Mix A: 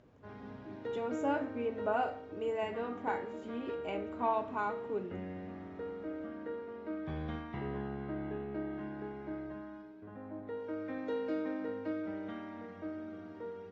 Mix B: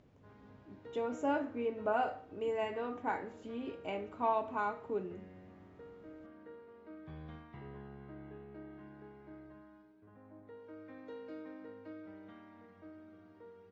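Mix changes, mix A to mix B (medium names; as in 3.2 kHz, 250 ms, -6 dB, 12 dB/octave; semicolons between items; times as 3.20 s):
background -10.0 dB; reverb: off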